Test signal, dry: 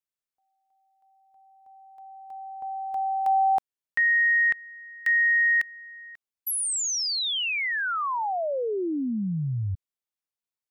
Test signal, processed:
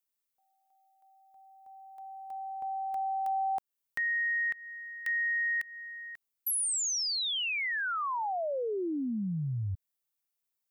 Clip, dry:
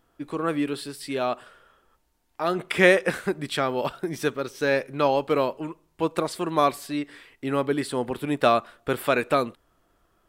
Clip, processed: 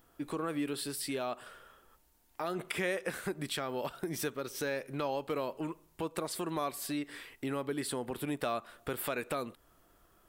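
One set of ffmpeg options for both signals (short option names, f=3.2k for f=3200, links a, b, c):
-af "highshelf=f=9.5k:g=12,acompressor=threshold=-32dB:ratio=3:attack=1.2:release=172:knee=6:detection=rms"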